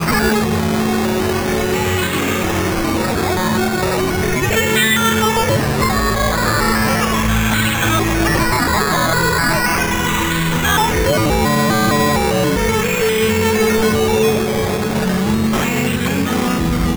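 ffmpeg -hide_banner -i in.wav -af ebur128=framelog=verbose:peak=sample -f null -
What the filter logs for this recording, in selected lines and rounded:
Integrated loudness:
  I:         -15.5 LUFS
  Threshold: -25.5 LUFS
Loudness range:
  LRA:         2.1 LU
  Threshold: -35.3 LUFS
  LRA low:   -16.8 LUFS
  LRA high:  -14.7 LUFS
Sample peak:
  Peak:       -6.7 dBFS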